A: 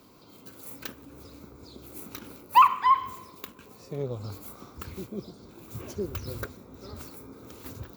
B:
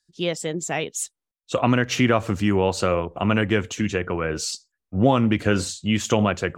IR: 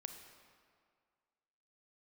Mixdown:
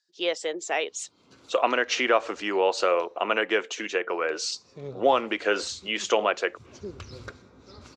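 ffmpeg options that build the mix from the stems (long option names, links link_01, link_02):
-filter_complex "[0:a]tiltshelf=frequency=970:gain=-3,adelay=850,volume=-5.5dB,asplit=3[link_01][link_02][link_03];[link_01]atrim=end=3.06,asetpts=PTS-STARTPTS,afade=type=out:start_time=3.056:duration=0.004:curve=hsin[link_04];[link_02]atrim=start=3.06:end=4.09,asetpts=PTS-STARTPTS,volume=0[link_05];[link_03]atrim=start=4.09,asetpts=PTS-STARTPTS,afade=type=in:duration=0.004:curve=hsin[link_06];[link_04][link_05][link_06]concat=n=3:v=0:a=1,asplit=2[link_07][link_08];[link_08]volume=-6.5dB[link_09];[1:a]highpass=frequency=390:width=0.5412,highpass=frequency=390:width=1.3066,volume=0dB,asplit=2[link_10][link_11];[link_11]apad=whole_len=388615[link_12];[link_07][link_12]sidechaincompress=threshold=-49dB:ratio=3:attack=16:release=180[link_13];[2:a]atrim=start_sample=2205[link_14];[link_09][link_14]afir=irnorm=-1:irlink=0[link_15];[link_13][link_10][link_15]amix=inputs=3:normalize=0,lowpass=frequency=6300:width=0.5412,lowpass=frequency=6300:width=1.3066"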